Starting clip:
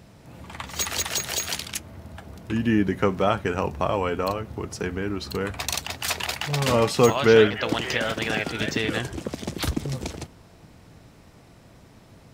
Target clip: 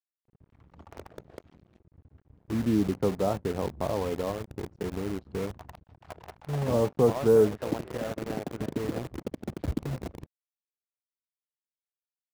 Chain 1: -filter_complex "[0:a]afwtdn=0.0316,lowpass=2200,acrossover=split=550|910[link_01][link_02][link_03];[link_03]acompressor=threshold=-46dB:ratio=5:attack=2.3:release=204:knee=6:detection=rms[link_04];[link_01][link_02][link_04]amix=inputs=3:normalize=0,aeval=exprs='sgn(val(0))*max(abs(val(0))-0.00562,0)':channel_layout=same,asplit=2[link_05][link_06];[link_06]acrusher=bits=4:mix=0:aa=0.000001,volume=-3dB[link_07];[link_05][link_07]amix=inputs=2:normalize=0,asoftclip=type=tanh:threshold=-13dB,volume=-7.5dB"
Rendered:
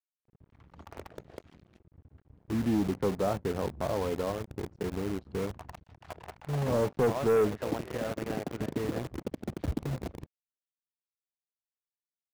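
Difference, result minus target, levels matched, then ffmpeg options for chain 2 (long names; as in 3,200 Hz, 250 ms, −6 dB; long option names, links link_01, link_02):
soft clipping: distortion +14 dB; downward compressor: peak gain reduction −7 dB
-filter_complex "[0:a]afwtdn=0.0316,lowpass=2200,acrossover=split=550|910[link_01][link_02][link_03];[link_03]acompressor=threshold=-55dB:ratio=5:attack=2.3:release=204:knee=6:detection=rms[link_04];[link_01][link_02][link_04]amix=inputs=3:normalize=0,aeval=exprs='sgn(val(0))*max(abs(val(0))-0.00562,0)':channel_layout=same,asplit=2[link_05][link_06];[link_06]acrusher=bits=4:mix=0:aa=0.000001,volume=-3dB[link_07];[link_05][link_07]amix=inputs=2:normalize=0,asoftclip=type=tanh:threshold=-2dB,volume=-7.5dB"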